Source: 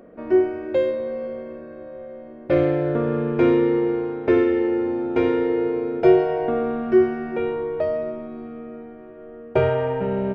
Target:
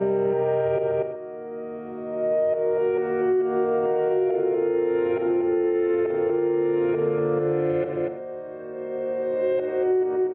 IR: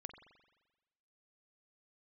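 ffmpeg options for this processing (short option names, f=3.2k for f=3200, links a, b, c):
-filter_complex "[0:a]areverse,equalizer=f=220:t=o:w=0.39:g=-14.5,asplit=2[a][b];[b]adelay=239.1,volume=-11dB,highshelf=f=4k:g=-5.38[c];[a][c]amix=inputs=2:normalize=0[d];[1:a]atrim=start_sample=2205,atrim=end_sample=6174[e];[d][e]afir=irnorm=-1:irlink=0,alimiter=limit=-20.5dB:level=0:latency=1:release=137,highpass=f=100:w=0.5412,highpass=f=100:w=1.3066,equalizer=f=200:t=q:w=4:g=6,equalizer=f=420:t=q:w=4:g=7,equalizer=f=690:t=q:w=4:g=4,lowpass=f=3k:w=0.5412,lowpass=f=3k:w=1.3066,acompressor=threshold=-27dB:ratio=4,volume=7dB"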